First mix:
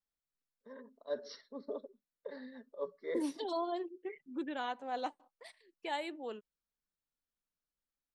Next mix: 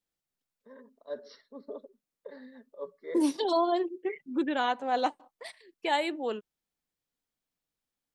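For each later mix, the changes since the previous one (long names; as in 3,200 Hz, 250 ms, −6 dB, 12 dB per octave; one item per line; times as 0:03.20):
first voice: add high-frequency loss of the air 96 metres
second voice +10.0 dB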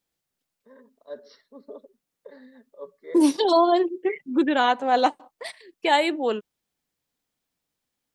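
second voice +8.0 dB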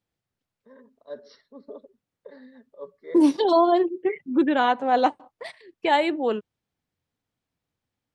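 second voice: add low-pass filter 2,600 Hz 6 dB per octave
master: add parametric band 99 Hz +10.5 dB 1.1 octaves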